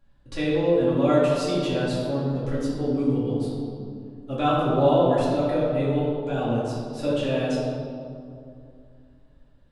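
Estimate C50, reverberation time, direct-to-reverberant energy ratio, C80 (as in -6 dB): -1.0 dB, 2.5 s, -9.5 dB, 0.5 dB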